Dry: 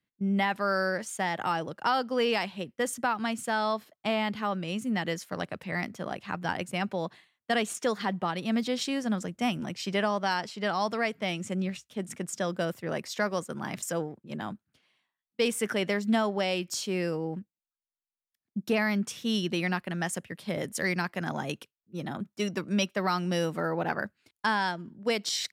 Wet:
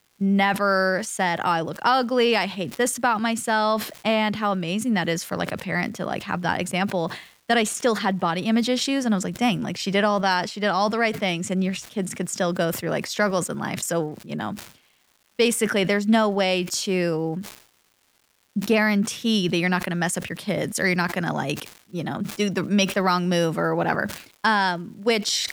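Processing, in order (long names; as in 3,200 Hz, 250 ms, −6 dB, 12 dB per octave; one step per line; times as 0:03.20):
surface crackle 480 per second −55 dBFS
level that may fall only so fast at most 110 dB per second
level +7 dB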